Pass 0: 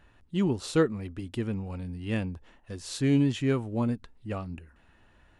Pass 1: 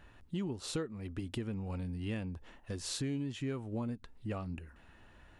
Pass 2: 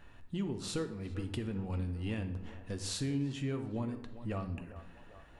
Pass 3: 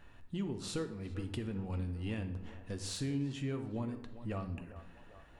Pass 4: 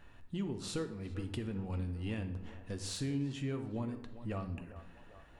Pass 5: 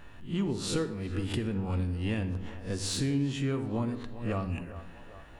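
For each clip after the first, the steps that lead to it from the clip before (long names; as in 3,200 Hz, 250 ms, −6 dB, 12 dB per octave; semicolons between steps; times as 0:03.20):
downward compressor 5 to 1, threshold −37 dBFS, peak gain reduction 17.5 dB; level +1.5 dB
feedback echo with a band-pass in the loop 397 ms, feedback 71%, band-pass 810 Hz, level −12 dB; on a send at −7.5 dB: convolution reverb RT60 0.85 s, pre-delay 4 ms
de-essing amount 80%; level −1.5 dB
no processing that can be heard
peak hold with a rise ahead of every peak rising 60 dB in 0.31 s; level +6.5 dB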